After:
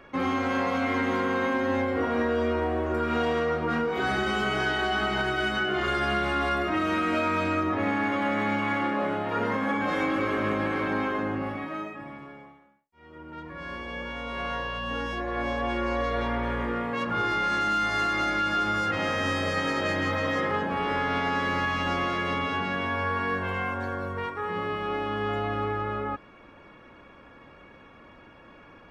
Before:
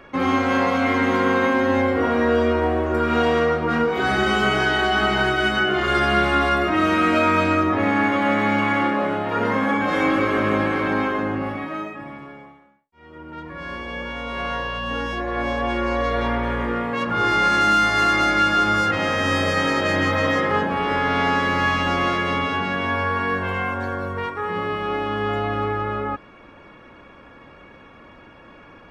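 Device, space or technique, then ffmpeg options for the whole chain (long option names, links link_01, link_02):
soft clipper into limiter: -af "asoftclip=type=tanh:threshold=-7.5dB,alimiter=limit=-13dB:level=0:latency=1:release=168,volume=-5dB"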